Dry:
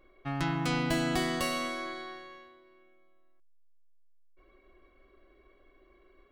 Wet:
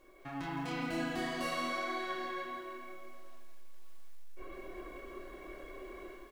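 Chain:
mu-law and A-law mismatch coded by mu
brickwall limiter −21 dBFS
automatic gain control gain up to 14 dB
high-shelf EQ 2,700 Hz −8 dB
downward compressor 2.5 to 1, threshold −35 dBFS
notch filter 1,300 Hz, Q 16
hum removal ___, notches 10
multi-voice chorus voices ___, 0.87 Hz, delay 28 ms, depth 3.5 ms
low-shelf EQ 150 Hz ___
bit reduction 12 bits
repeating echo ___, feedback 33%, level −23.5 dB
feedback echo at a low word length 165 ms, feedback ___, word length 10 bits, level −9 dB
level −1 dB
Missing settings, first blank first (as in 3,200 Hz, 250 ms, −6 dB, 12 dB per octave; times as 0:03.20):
81.6 Hz, 6, −10.5 dB, 580 ms, 35%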